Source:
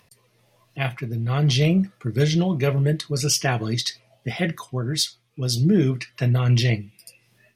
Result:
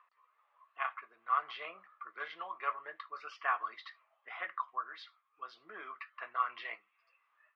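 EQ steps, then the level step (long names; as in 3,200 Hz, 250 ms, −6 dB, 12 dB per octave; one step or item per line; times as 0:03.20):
four-pole ladder high-pass 1,100 Hz, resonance 80%
high-frequency loss of the air 390 metres
head-to-tape spacing loss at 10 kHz 29 dB
+8.0 dB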